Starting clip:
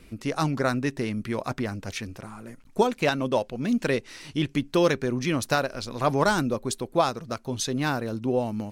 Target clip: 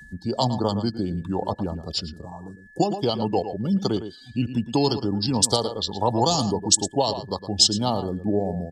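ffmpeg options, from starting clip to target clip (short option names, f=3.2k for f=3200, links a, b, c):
-filter_complex "[0:a]afftdn=nr=27:nf=-40,bandreject=f=1.3k:w=14,asplit=2[a][b];[b]adelay=110.8,volume=-12dB,highshelf=f=4k:g=-2.49[c];[a][c]amix=inputs=2:normalize=0,acrossover=split=280|3000[d][e][f];[e]acompressor=threshold=-24dB:ratio=5[g];[d][g][f]amix=inputs=3:normalize=0,aeval=exprs='val(0)+0.0158*sin(2*PI*2100*n/s)':c=same,highshelf=f=1.6k:t=q:w=3:g=-14,acrossover=split=1000[h][i];[i]aexciter=amount=14.1:drive=8.5:freq=3.8k[j];[h][j]amix=inputs=2:normalize=0,acompressor=mode=upward:threshold=-35dB:ratio=2.5,asetrate=36028,aresample=44100,atempo=1.22405,highpass=47,volume=1.5dB"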